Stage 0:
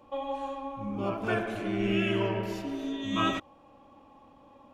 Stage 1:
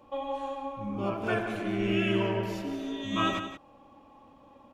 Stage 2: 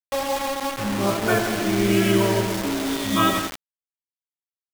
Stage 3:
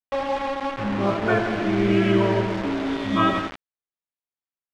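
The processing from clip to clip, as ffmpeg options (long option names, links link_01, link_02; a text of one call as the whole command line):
ffmpeg -i in.wav -af "aecho=1:1:174:0.299" out.wav
ffmpeg -i in.wav -af "bandreject=frequency=2700:width=7.1,acrusher=bits=5:mix=0:aa=0.000001,volume=8.5dB" out.wav
ffmpeg -i in.wav -af "lowpass=2600" out.wav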